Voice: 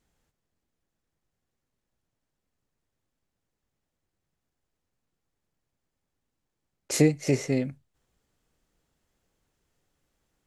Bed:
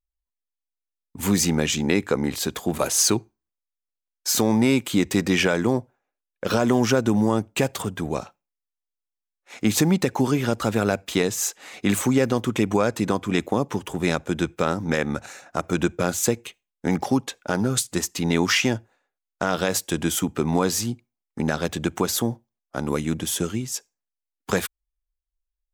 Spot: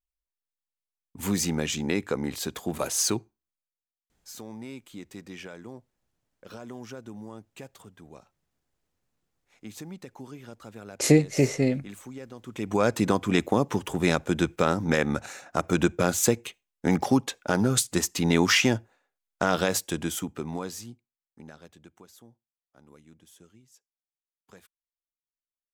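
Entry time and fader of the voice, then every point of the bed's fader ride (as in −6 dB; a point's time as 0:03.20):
4.10 s, +2.5 dB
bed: 0:03.56 −6 dB
0:04.16 −21.5 dB
0:12.38 −21.5 dB
0:12.85 −0.5 dB
0:19.55 −0.5 dB
0:22.06 −29.5 dB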